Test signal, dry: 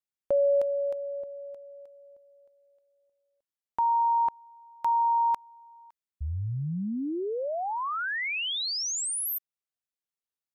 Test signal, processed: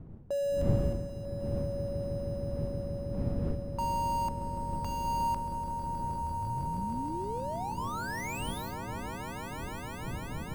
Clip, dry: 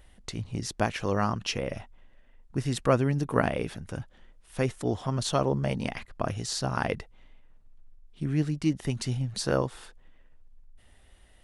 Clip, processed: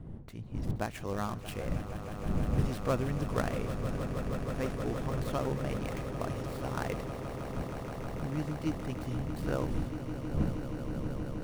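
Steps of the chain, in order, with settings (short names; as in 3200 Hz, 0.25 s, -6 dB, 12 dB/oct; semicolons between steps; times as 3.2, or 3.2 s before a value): switching dead time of 0.084 ms; wind noise 160 Hz -31 dBFS; swelling echo 0.158 s, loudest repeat 8, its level -12.5 dB; mismatched tape noise reduction decoder only; gain -8 dB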